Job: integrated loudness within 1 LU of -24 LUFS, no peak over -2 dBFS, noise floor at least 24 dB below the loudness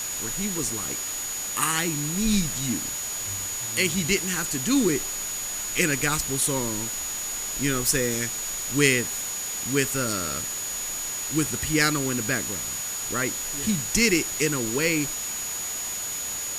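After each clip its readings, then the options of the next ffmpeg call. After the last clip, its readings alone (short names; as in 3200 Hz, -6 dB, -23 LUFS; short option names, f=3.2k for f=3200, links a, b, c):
steady tone 6800 Hz; tone level -30 dBFS; noise floor -31 dBFS; noise floor target -49 dBFS; loudness -24.5 LUFS; peak -6.0 dBFS; loudness target -24.0 LUFS
-> -af "bandreject=f=6.8k:w=30"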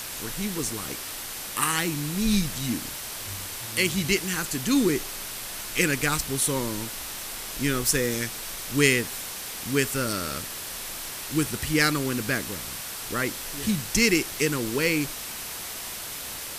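steady tone none; noise floor -36 dBFS; noise floor target -51 dBFS
-> -af "afftdn=nr=15:nf=-36"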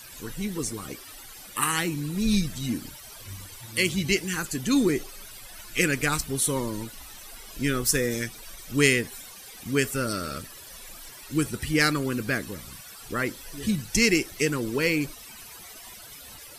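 noise floor -45 dBFS; noise floor target -50 dBFS
-> -af "afftdn=nr=6:nf=-45"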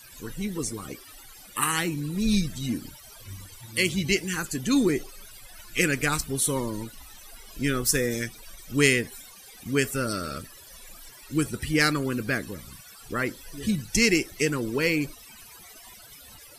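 noise floor -48 dBFS; noise floor target -51 dBFS
-> -af "afftdn=nr=6:nf=-48"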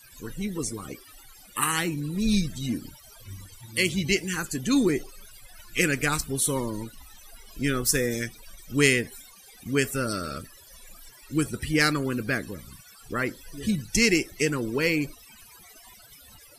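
noise floor -51 dBFS; loudness -26.5 LUFS; peak -7.0 dBFS; loudness target -24.0 LUFS
-> -af "volume=2.5dB"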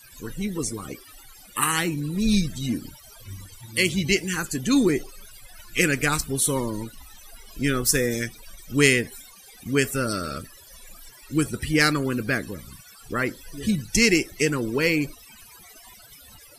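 loudness -24.0 LUFS; peak -4.5 dBFS; noise floor -49 dBFS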